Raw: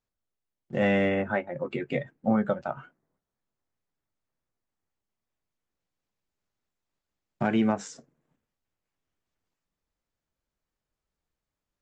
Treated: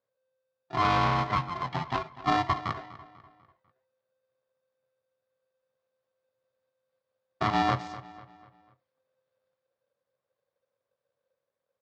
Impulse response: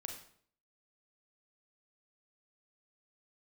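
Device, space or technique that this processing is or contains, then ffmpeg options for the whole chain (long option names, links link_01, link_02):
ring modulator pedal into a guitar cabinet: -filter_complex "[0:a]aeval=exprs='val(0)*sgn(sin(2*PI*520*n/s))':channel_layout=same,highpass=87,equalizer=frequency=94:width_type=q:width=4:gain=4,equalizer=frequency=130:width_type=q:width=4:gain=10,equalizer=frequency=320:width_type=q:width=4:gain=-5,equalizer=frequency=540:width_type=q:width=4:gain=10,equalizer=frequency=1100:width_type=q:width=4:gain=6,equalizer=frequency=2700:width_type=q:width=4:gain=-5,lowpass=frequency=4600:width=0.5412,lowpass=frequency=4600:width=1.3066,asplit=2[link_01][link_02];[link_02]adelay=247,lowpass=frequency=4900:poles=1,volume=-16dB,asplit=2[link_03][link_04];[link_04]adelay=247,lowpass=frequency=4900:poles=1,volume=0.45,asplit=2[link_05][link_06];[link_06]adelay=247,lowpass=frequency=4900:poles=1,volume=0.45,asplit=2[link_07][link_08];[link_08]adelay=247,lowpass=frequency=4900:poles=1,volume=0.45[link_09];[link_01][link_03][link_05][link_07][link_09]amix=inputs=5:normalize=0,volume=-2.5dB"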